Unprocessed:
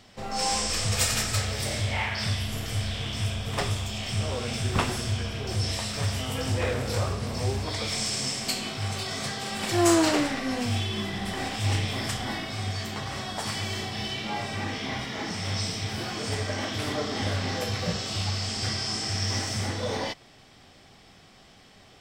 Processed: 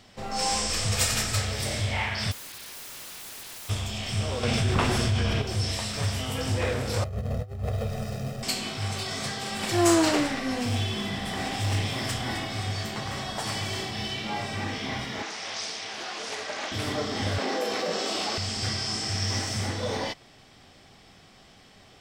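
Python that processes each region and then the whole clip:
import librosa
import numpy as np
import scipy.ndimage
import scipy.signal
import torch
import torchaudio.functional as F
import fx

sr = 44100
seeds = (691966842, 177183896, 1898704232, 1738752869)

y = fx.envelope_flatten(x, sr, power=0.1, at=(2.31, 3.68), fade=0.02)
y = fx.cheby1_bandpass(y, sr, low_hz=1700.0, high_hz=5100.0, order=4, at=(2.31, 3.68), fade=0.02)
y = fx.overflow_wrap(y, sr, gain_db=36.5, at=(2.31, 3.68), fade=0.02)
y = fx.chain(y, sr, fx.high_shelf(hz=5300.0, db=-7.5),
    fx.env_flatten(amount_pct=70), at=(4.43, 5.42))
y = fx.chain(y, sr, fx.median_filter(points=41),
    fx.over_compress(threshold_db=-33.0, ratio=-0.5),
    fx.comb(ms=1.6, depth=0.99), at=(7.04, 8.43))
y = fx.chain(y, sr, fx.overload_stage(gain_db=22.5),
    fx.echo_alternate(ms=130, hz=1100.0, feedback_pct=70, wet_db=-7), at=(10.53, 13.91))
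y = fx.chain(y, sr, fx.bandpass_edges(low_hz=510.0, high_hz=6900.0),
    fx.doppler_dist(depth_ms=0.26), at=(15.22, 16.72))
y = fx.chain(y, sr, fx.highpass(hz=290.0, slope=24),
    fx.tilt_shelf(db=4.5, hz=1100.0),
    fx.env_flatten(amount_pct=70), at=(17.38, 18.38))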